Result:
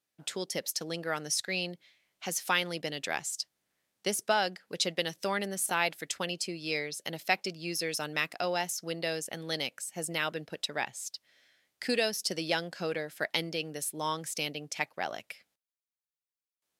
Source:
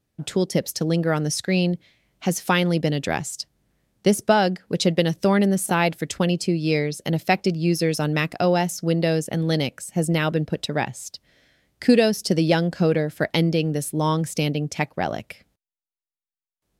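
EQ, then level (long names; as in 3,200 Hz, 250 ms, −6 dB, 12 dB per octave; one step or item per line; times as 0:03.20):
high-pass filter 1,300 Hz 6 dB per octave
−3.5 dB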